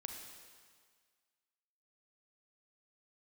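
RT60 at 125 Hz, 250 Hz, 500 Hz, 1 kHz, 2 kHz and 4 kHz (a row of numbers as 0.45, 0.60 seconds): 1.6, 1.6, 1.7, 1.8, 1.8, 1.7 seconds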